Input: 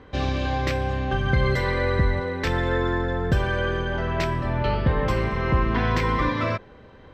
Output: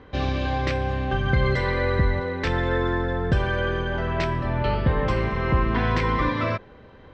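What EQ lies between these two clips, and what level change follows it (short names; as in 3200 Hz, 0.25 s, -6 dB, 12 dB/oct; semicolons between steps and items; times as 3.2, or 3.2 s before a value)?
LPF 5500 Hz 12 dB/oct; 0.0 dB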